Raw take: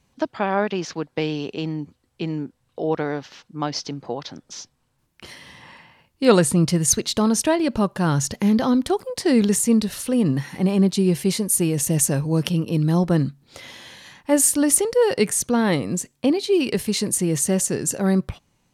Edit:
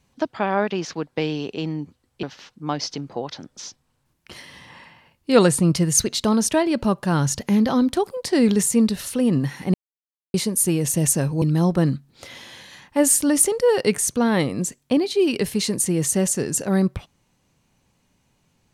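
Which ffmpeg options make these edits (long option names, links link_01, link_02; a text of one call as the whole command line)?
ffmpeg -i in.wav -filter_complex "[0:a]asplit=5[link_01][link_02][link_03][link_04][link_05];[link_01]atrim=end=2.232[link_06];[link_02]atrim=start=3.158:end=10.67,asetpts=PTS-STARTPTS,afade=type=out:start_time=7.508:duration=0.004:curve=hsin[link_07];[link_03]atrim=start=10.67:end=11.27,asetpts=PTS-STARTPTS,volume=0[link_08];[link_04]atrim=start=11.27:end=12.352,asetpts=PTS-STARTPTS,afade=type=in:duration=0.004:curve=hsin[link_09];[link_05]atrim=start=12.748[link_10];[link_07][link_08][link_09]concat=n=3:v=0:a=1[link_11];[link_06][link_11]acrossfade=duration=0.004:curve1=hsin:curve2=hsin[link_12];[link_12][link_10]acrossfade=duration=0.004:curve1=hsin:curve2=hsin" out.wav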